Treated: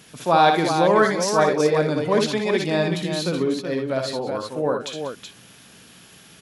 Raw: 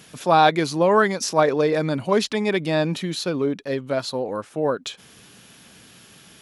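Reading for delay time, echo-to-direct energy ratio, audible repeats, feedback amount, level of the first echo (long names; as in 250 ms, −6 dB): 60 ms, −2.0 dB, 3, repeats not evenly spaced, −5.5 dB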